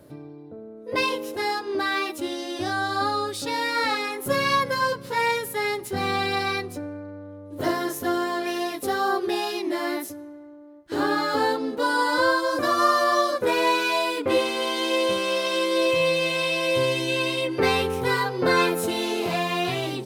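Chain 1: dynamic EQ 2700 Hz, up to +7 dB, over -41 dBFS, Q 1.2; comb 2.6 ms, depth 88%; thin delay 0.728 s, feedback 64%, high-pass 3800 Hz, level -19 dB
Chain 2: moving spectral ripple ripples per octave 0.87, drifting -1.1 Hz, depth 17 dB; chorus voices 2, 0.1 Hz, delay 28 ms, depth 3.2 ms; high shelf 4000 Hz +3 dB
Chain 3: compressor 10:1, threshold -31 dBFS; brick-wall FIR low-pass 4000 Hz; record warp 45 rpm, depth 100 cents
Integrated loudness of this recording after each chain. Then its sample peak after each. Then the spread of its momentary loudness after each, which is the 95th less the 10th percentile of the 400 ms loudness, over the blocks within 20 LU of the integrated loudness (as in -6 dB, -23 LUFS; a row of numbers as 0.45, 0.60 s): -18.5, -23.0, -34.5 LUFS; -4.0, -4.5, -22.0 dBFS; 8, 9, 4 LU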